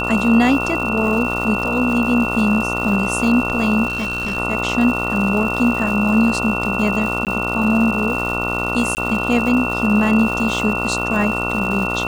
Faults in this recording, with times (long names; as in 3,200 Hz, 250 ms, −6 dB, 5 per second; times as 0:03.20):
mains buzz 60 Hz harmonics 24 −24 dBFS
surface crackle 350 per second −26 dBFS
whistle 2,700 Hz −22 dBFS
0:03.88–0:04.38: clipping −18.5 dBFS
0:07.25–0:07.27: drop-out 18 ms
0:08.95–0:08.97: drop-out 19 ms